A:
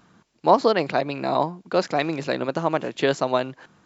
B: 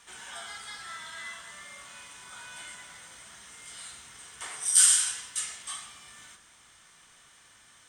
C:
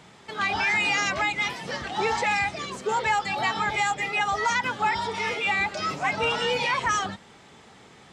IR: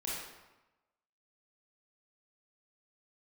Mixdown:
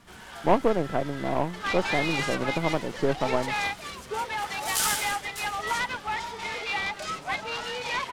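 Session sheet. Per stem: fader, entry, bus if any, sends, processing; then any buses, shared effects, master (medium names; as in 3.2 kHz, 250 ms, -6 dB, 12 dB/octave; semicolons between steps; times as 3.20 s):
-5.5 dB, 0.00 s, no send, partial rectifier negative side -3 dB; elliptic low-pass 1.5 kHz; tilt EQ -2.5 dB/octave
+2.0 dB, 0.00 s, no send, tilt EQ -3 dB/octave
-1.5 dB, 1.25 s, no send, bass shelf 410 Hz -7.5 dB; random flutter of the level, depth 60%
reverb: none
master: delay time shaken by noise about 1.3 kHz, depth 0.033 ms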